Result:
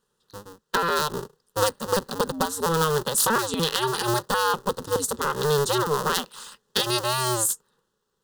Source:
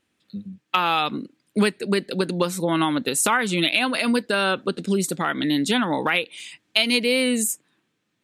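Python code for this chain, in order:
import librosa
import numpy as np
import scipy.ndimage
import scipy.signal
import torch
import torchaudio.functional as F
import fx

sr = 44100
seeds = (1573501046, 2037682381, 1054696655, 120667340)

y = fx.cycle_switch(x, sr, every=2, mode='inverted')
y = fx.fixed_phaser(y, sr, hz=450.0, stages=8)
y = y * 10.0 ** (1.5 / 20.0)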